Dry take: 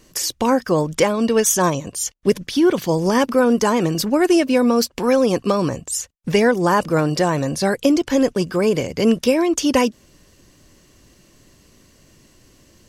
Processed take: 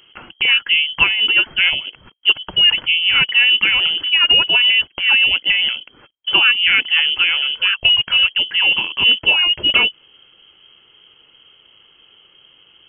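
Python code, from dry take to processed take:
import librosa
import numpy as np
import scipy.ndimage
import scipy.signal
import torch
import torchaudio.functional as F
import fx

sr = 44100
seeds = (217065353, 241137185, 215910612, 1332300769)

y = fx.freq_invert(x, sr, carrier_hz=3200)
y = fx.dynamic_eq(y, sr, hz=250.0, q=0.96, threshold_db=-47.0, ratio=4.0, max_db=-7, at=(6.84, 8.39), fade=0.02)
y = y * librosa.db_to_amplitude(2.0)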